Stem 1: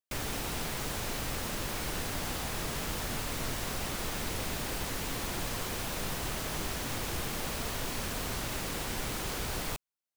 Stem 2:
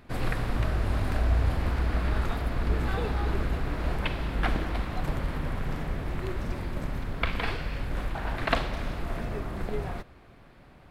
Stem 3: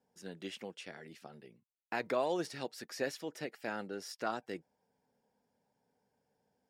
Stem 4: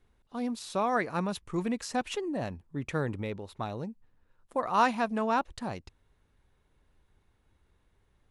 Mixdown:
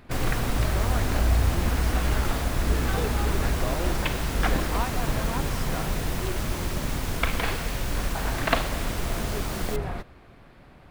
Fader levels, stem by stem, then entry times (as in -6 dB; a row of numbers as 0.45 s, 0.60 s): +0.5 dB, +2.5 dB, -1.0 dB, -8.0 dB; 0.00 s, 0.00 s, 1.50 s, 0.00 s